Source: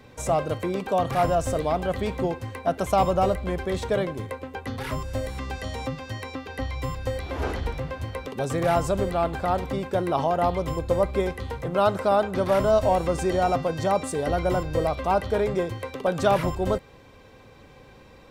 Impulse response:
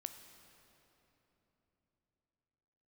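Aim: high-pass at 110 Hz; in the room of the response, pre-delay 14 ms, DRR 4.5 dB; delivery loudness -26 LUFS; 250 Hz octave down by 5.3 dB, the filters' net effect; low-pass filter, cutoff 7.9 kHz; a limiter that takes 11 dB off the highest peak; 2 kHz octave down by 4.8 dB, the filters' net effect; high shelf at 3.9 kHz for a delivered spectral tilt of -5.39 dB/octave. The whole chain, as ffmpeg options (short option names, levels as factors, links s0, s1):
-filter_complex "[0:a]highpass=110,lowpass=7900,equalizer=f=250:t=o:g=-8,equalizer=f=2000:t=o:g=-5,highshelf=f=3900:g=-6,alimiter=limit=0.0841:level=0:latency=1,asplit=2[s0][s1];[1:a]atrim=start_sample=2205,adelay=14[s2];[s1][s2]afir=irnorm=-1:irlink=0,volume=0.891[s3];[s0][s3]amix=inputs=2:normalize=0,volume=1.78"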